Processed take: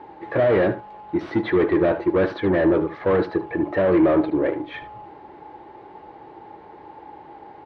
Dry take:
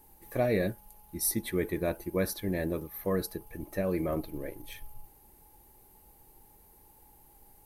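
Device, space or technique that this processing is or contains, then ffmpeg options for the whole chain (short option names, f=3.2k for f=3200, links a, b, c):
overdrive pedal into a guitar cabinet: -filter_complex "[0:a]asplit=2[a][b];[b]highpass=f=720:p=1,volume=28dB,asoftclip=type=tanh:threshold=-15.5dB[c];[a][c]amix=inputs=2:normalize=0,lowpass=f=1.7k:p=1,volume=-6dB,highpass=80,equalizer=f=220:t=q:w=4:g=-6,equalizer=f=320:t=q:w=4:g=5,equalizer=f=2.6k:t=q:w=4:g=-4,lowpass=f=3.6k:w=0.5412,lowpass=f=3.6k:w=1.3066,asettb=1/sr,asplit=3[d][e][f];[d]atrim=end=4.304[g];[e]atrim=start=4.3:end=4.74,asetpts=PTS-STARTPTS,afade=t=in:d=0.004:c=qsin,afade=t=out:st=0.436:d=0.004:c=qsin,agate=range=-33dB:threshold=-31dB:ratio=3:detection=peak[h];[f]atrim=start=4.736[i];[g][h]acrossfade=d=0.004:c1=hsin:c2=qsin[j];[j][i]acrossfade=d=0.004:c1=qsin:c2=hsin,highshelf=f=3k:g=-9.5,aecho=1:1:75:0.188,volume=5dB"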